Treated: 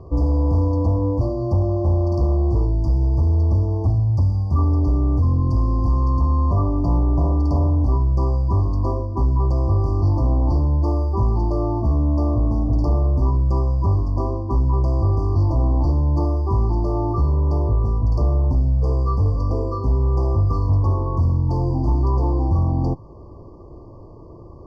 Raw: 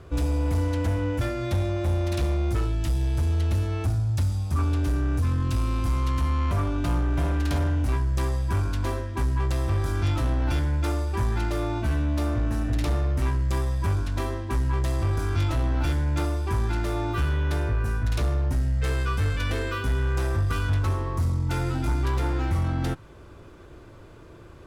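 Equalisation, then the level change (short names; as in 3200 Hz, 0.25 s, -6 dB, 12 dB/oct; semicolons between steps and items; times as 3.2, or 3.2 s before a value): brick-wall FIR band-stop 1200–4400 Hz; air absorption 270 m; +6.5 dB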